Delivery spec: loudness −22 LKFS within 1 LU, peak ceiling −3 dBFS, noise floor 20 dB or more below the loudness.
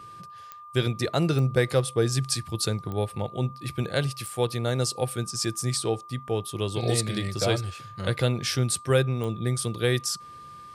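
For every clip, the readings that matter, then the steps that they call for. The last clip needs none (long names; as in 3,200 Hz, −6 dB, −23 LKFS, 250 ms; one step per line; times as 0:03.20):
number of clicks 5; interfering tone 1,200 Hz; level of the tone −42 dBFS; integrated loudness −27.0 LKFS; sample peak −9.0 dBFS; target loudness −22.0 LKFS
→ click removal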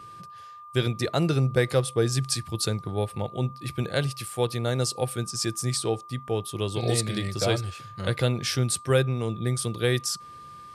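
number of clicks 0; interfering tone 1,200 Hz; level of the tone −42 dBFS
→ notch filter 1,200 Hz, Q 30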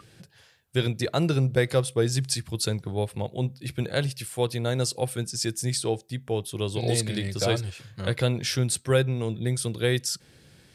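interfering tone none found; integrated loudness −27.0 LKFS; sample peak −9.0 dBFS; target loudness −22.0 LKFS
→ level +5 dB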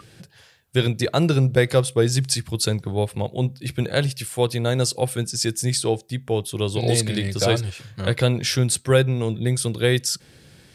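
integrated loudness −22.0 LKFS; sample peak −4.0 dBFS; background noise floor −52 dBFS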